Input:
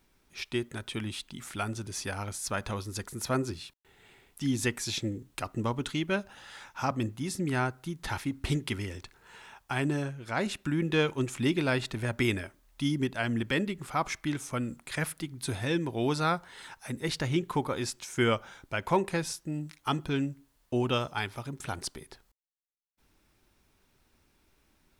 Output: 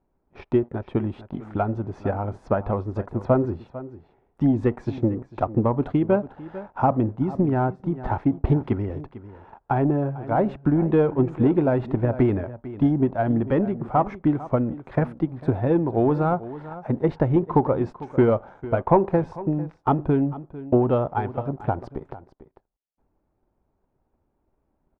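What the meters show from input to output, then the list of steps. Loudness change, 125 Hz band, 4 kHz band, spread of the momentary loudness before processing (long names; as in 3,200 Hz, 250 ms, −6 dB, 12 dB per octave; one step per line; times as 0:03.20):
+8.5 dB, +9.0 dB, below −15 dB, 11 LU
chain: leveller curve on the samples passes 2
low-pass with resonance 750 Hz, resonance Q 1.5
on a send: single-tap delay 448 ms −15 dB
on the sum: transient designer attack +6 dB, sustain +2 dB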